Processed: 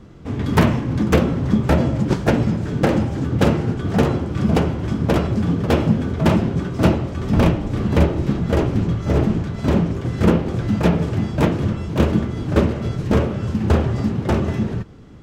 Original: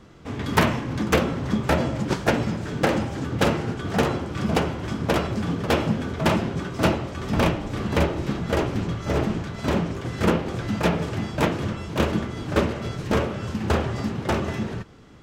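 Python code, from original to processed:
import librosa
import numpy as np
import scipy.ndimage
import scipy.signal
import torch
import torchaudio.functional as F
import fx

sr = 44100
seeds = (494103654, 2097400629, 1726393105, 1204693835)

y = fx.low_shelf(x, sr, hz=470.0, db=10.0)
y = y * 10.0 ** (-1.5 / 20.0)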